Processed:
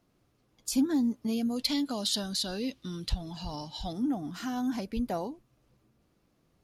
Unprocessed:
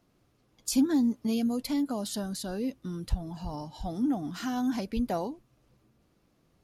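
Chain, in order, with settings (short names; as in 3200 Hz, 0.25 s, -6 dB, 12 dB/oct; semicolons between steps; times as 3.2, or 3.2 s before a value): 1.56–3.93 bell 3800 Hz +14 dB 1.6 oct; gain -2 dB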